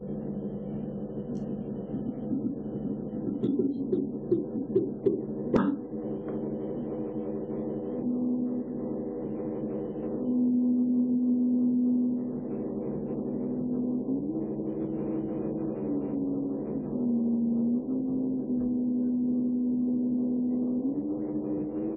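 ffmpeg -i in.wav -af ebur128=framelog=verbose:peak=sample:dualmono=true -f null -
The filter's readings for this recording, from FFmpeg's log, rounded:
Integrated loudness:
  I:         -27.2 LUFS
  Threshold: -37.2 LUFS
Loudness range:
  LRA:         5.2 LU
  Threshold: -47.0 LUFS
  LRA low:   -29.6 LUFS
  LRA high:  -24.5 LUFS
Sample peak:
  Peak:      -10.4 dBFS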